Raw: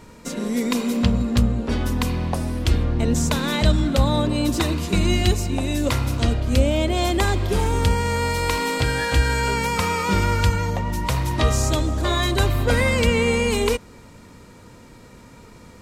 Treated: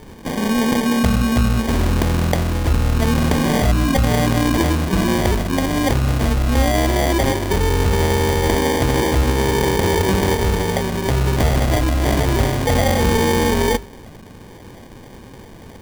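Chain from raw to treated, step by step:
mains-hum notches 50/100/150/200/250/300/350/400 Hz
in parallel at −1 dB: compressor whose output falls as the input rises −23 dBFS
on the sum: decimation without filtering 33×

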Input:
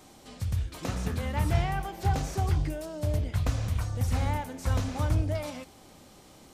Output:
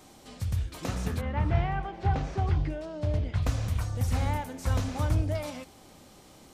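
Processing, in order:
0:01.20–0:03.41: low-pass filter 2,200 Hz → 4,700 Hz 12 dB per octave

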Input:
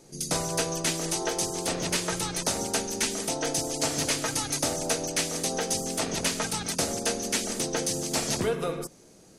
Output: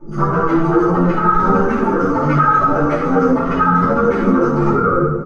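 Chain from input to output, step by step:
expanding power law on the bin magnitudes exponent 2.2
parametric band 690 Hz −12.5 dB 0.35 octaves
in parallel at 0 dB: downward compressor 8 to 1, threshold −40 dBFS, peak gain reduction 16.5 dB
on the sum: soft clipping −27.5 dBFS, distortion −11 dB
low-pass with resonance 1,300 Hz, resonance Q 8.3
phase-vocoder stretch with locked phases 0.56×
double-tracking delay 27 ms −10.5 dB
repeating echo 124 ms, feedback 58%, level −15.5 dB
convolution reverb RT60 1.0 s, pre-delay 3 ms, DRR −13.5 dB
boost into a limiter +6 dB
string-ensemble chorus
level −1.5 dB

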